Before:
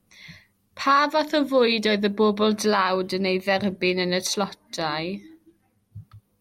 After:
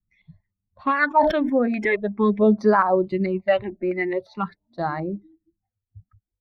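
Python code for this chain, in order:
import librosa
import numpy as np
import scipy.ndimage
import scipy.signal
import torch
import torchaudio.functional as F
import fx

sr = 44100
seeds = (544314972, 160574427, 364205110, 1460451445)

y = fx.bin_expand(x, sr, power=1.5)
y = fx.filter_lfo_lowpass(y, sr, shape='square', hz=2.3, low_hz=840.0, high_hz=1700.0, q=1.6)
y = fx.phaser_stages(y, sr, stages=8, low_hz=130.0, high_hz=3100.0, hz=0.45, feedback_pct=25)
y = fx.sustainer(y, sr, db_per_s=58.0, at=(1.07, 1.85))
y = y * 10.0 ** (5.5 / 20.0)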